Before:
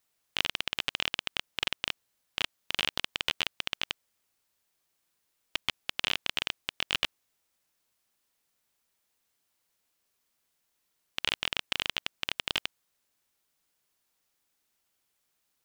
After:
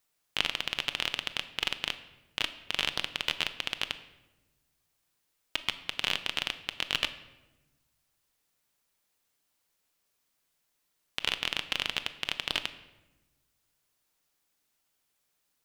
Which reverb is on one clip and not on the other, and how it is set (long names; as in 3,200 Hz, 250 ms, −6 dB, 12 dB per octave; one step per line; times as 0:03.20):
rectangular room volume 560 cubic metres, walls mixed, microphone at 0.41 metres